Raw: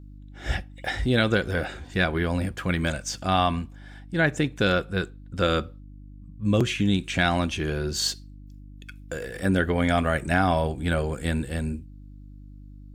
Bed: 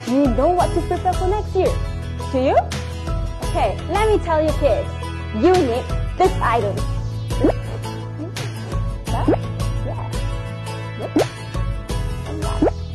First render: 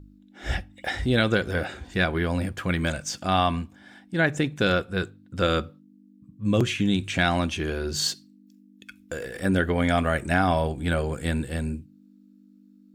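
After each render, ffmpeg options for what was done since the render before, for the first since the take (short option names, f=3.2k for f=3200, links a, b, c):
-af "bandreject=f=50:t=h:w=4,bandreject=f=100:t=h:w=4,bandreject=f=150:t=h:w=4"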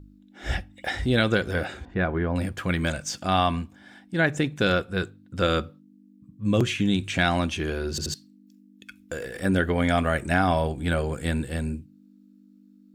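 -filter_complex "[0:a]asettb=1/sr,asplit=3[a][b][c];[a]atrim=end=1.854[d];[b]atrim=start=1.85:end=2.36,asetpts=PTS-STARTPTS,afade=t=in:d=0.004:c=qsin,afade=t=out:st=0.506:d=0.004:c=qsin,lowpass=1.5k[e];[c]atrim=start=2.356[f];[d][e]acrossfade=d=0.004:c1=hsin:c2=qsin[g];[g][f]acrossfade=d=0.004:c1=qsin:c2=hsin,asplit=4[h][i][j][k];[h]atrim=end=7.982[l];[i]atrim=start=7.898:end=7.982[m];[j]atrim=start=7.898:end=7.982[n];[k]atrim=start=8.138[o];[l][m]acrossfade=d=0.004:c1=hsin:c2=hsin[p];[p][n]acrossfade=d=0.004:c1=hsin:c2=hsin[q];[q][o]acrossfade=d=0.004:c1=hsin:c2=hsin"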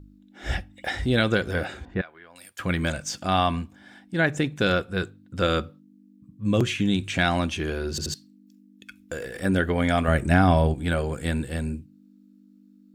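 -filter_complex "[0:a]asettb=1/sr,asplit=3[a][b][c];[a]atrim=end=2.014[d];[b]atrim=start=2.01:end=2.59,asetpts=PTS-STARTPTS,afade=t=in:d=0.004:c=qsin,afade=t=out:st=0.576:d=0.004:c=qsin,aderivative[e];[c]atrim=start=2.586[f];[d][e]acrossfade=d=0.004:c1=hsin:c2=qsin[g];[g][f]acrossfade=d=0.004:c1=qsin:c2=hsin,asettb=1/sr,asplit=3[h][i][j];[h]atrim=end=10.084[k];[i]atrim=start=10.08:end=10.74,asetpts=PTS-STARTPTS,afade=t=in:d=0.004:c=qsin,afade=t=out:st=0.656:d=0.004:c=qsin,lowshelf=f=330:g=8[l];[j]atrim=start=10.736[m];[k][l]acrossfade=d=0.004:c1=hsin:c2=qsin[n];[n][m]acrossfade=d=0.004:c1=qsin:c2=hsin"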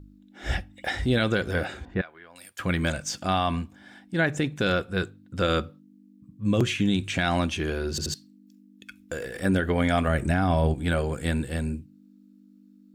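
-af "alimiter=limit=-13dB:level=0:latency=1:release=52"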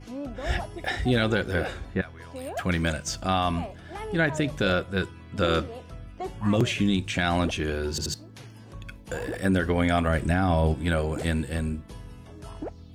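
-filter_complex "[1:a]volume=-19dB[a];[0:a][a]amix=inputs=2:normalize=0"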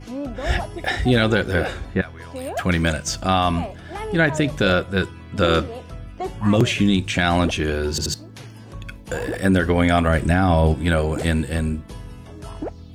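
-af "volume=6dB"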